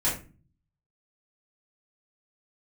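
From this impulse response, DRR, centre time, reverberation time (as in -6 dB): -8.5 dB, 30 ms, 0.35 s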